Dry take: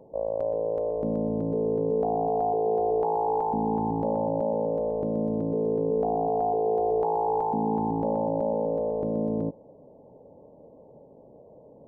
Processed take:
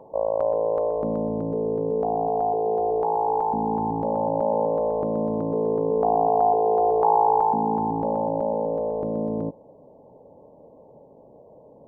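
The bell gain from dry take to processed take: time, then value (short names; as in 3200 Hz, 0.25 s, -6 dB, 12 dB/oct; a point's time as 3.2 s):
bell 1100 Hz 1.3 oct
0.77 s +15 dB
1.65 s +5 dB
4.05 s +5 dB
4.61 s +13.5 dB
7.11 s +13.5 dB
7.85 s +6 dB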